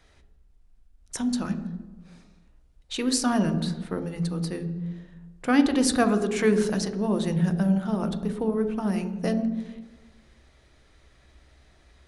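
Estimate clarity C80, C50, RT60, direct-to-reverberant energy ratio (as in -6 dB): 12.0 dB, 10.5 dB, 1.3 s, 7.5 dB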